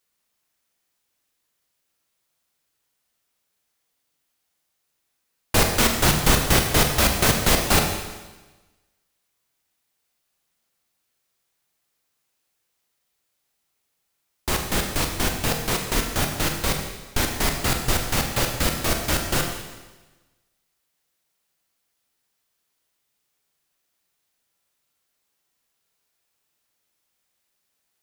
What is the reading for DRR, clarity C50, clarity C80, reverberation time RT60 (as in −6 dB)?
3.0 dB, 5.5 dB, 6.5 dB, 1.2 s